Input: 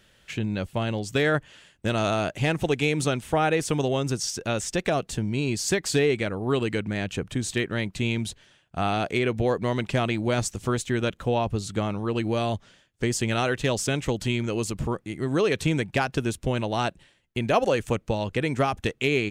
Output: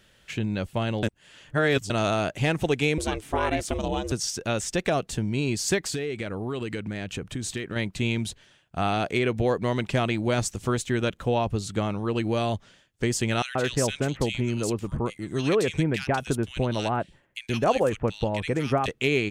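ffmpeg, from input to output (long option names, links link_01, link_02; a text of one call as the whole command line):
ffmpeg -i in.wav -filter_complex "[0:a]asettb=1/sr,asplit=3[link_01][link_02][link_03];[link_01]atrim=end=2.984[link_04];[link_02]atrim=start=2.98:end=4.12,asetpts=PTS-STARTPTS,afade=type=in:duration=0.004:curve=qsin,afade=type=out:start_time=1.136:duration=0.004:curve=qsin,aeval=exprs='val(0)*sin(2*PI*210*n/s)':channel_layout=same[link_05];[link_03]atrim=start=4.116[link_06];[link_04][link_05]acrossfade=duration=0.004:curve1=hsin:curve2=qsin[link_07];[link_07][link_06]acrossfade=duration=0.004:curve1=qsin:curve2=hsin,asettb=1/sr,asplit=3[link_08][link_09][link_10];[link_08]atrim=end=5.784[link_11];[link_09]atrim=start=5.78:end=7.76,asetpts=PTS-STARTPTS,afade=type=in:duration=0.004:curve=qsin,afade=type=out:start_time=1.976:duration=0.004:curve=qsin,acompressor=threshold=-27dB:ratio=4:attack=3.2:release=140:knee=1:detection=peak[link_12];[link_10]atrim=start=7.756[link_13];[link_11][link_12]acrossfade=duration=0.004:curve1=hsin:curve2=qsin[link_14];[link_14][link_13]acrossfade=duration=0.004:curve1=qsin:curve2=hsin,asettb=1/sr,asplit=3[link_15][link_16][link_17];[link_15]atrim=end=13.424[link_18];[link_16]atrim=start=13.42:end=18.88,asetpts=PTS-STARTPTS,afade=type=in:duration=0.004:curve=qsin,afade=type=out:start_time=5.456:duration=0.004:curve=qsin,acrossover=split=1900[link_19][link_20];[link_19]adelay=130[link_21];[link_21][link_20]amix=inputs=2:normalize=0,atrim=end_sample=240786[link_22];[link_17]atrim=start=18.876[link_23];[link_18][link_22]acrossfade=duration=0.004:curve1=hsin:curve2=qsin[link_24];[link_24][link_23]acrossfade=duration=0.004:curve1=qsin:curve2=hsin,asplit=3[link_25][link_26][link_27];[link_25]atrim=end=1.032[link_28];[link_26]atrim=start=1.028:end=1.902,asetpts=PTS-STARTPTS,areverse[link_29];[link_27]atrim=start=1.898[link_30];[link_28][link_29]acrossfade=duration=0.004:curve1=hsin:curve2=hsin[link_31];[link_31][link_30]acrossfade=duration=0.004:curve1=hsin:curve2=hsin" out.wav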